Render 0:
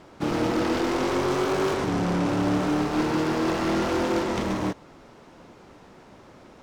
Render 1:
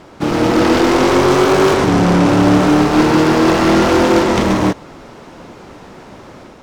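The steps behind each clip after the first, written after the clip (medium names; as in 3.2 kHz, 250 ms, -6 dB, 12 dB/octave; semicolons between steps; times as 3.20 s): level rider gain up to 4 dB; trim +9 dB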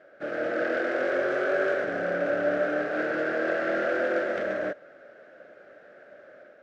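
two resonant band-passes 960 Hz, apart 1.4 oct; trim -3.5 dB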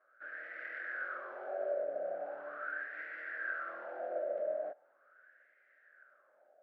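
wah-wah 0.4 Hz 600–2000 Hz, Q 6.4; trim -3 dB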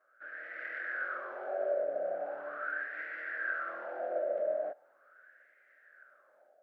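level rider gain up to 3.5 dB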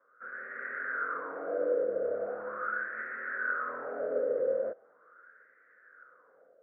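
mistuned SSB -85 Hz 150–2100 Hz; trim +3 dB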